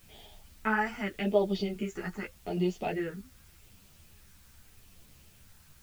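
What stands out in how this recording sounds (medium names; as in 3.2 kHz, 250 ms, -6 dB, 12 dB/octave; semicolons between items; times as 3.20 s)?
phasing stages 4, 0.84 Hz, lowest notch 570–1600 Hz; a quantiser's noise floor 10-bit, dither triangular; a shimmering, thickened sound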